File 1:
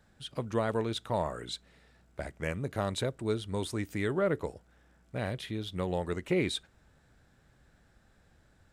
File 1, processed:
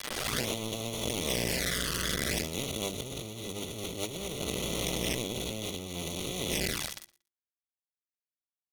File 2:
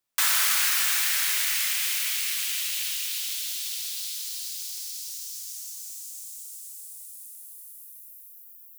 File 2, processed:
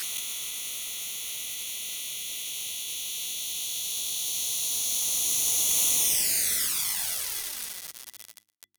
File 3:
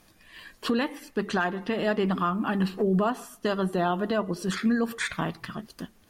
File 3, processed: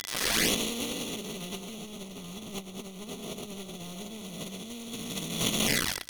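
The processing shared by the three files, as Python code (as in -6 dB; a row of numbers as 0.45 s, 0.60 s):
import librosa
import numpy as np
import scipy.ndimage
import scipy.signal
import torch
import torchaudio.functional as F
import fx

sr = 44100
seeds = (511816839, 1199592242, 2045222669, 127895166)

y = fx.spec_blur(x, sr, span_ms=1400.0)
y = fx.quant_companded(y, sr, bits=2)
y = fx.small_body(y, sr, hz=(2000.0, 3400.0), ring_ms=85, db=10)
y = fx.env_flanger(y, sr, rest_ms=11.3, full_db=-26.5)
y = fx.hum_notches(y, sr, base_hz=50, count=7)
y = fx.dynamic_eq(y, sr, hz=900.0, q=2.6, threshold_db=-51.0, ratio=4.0, max_db=-4)
y = fx.notch(y, sr, hz=7500.0, q=9.5)
y = fx.over_compress(y, sr, threshold_db=-35.0, ratio=-0.5)
y = fx.peak_eq(y, sr, hz=7900.0, db=9.0, octaves=2.8)
y = fx.echo_feedback(y, sr, ms=117, feedback_pct=17, wet_db=-21.0)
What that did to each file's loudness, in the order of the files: +1.0 LU, -1.5 LU, -4.5 LU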